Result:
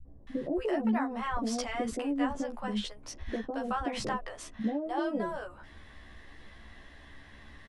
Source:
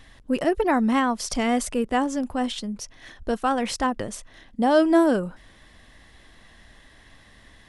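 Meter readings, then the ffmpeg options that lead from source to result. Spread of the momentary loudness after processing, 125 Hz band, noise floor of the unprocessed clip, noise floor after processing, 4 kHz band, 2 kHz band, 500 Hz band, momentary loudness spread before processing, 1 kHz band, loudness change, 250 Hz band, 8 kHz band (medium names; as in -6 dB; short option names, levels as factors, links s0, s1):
22 LU, -5.5 dB, -53 dBFS, -53 dBFS, -8.0 dB, -9.0 dB, -10.5 dB, 17 LU, -9.5 dB, -10.0 dB, -9.0 dB, -10.5 dB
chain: -filter_complex "[0:a]lowpass=f=2200:p=1,acompressor=threshold=0.0398:ratio=6,asplit=2[s0][s1];[s1]adelay=14,volume=0.75[s2];[s0][s2]amix=inputs=2:normalize=0,acrossover=split=170|600[s3][s4][s5];[s4]adelay=50[s6];[s5]adelay=270[s7];[s3][s6][s7]amix=inputs=3:normalize=0"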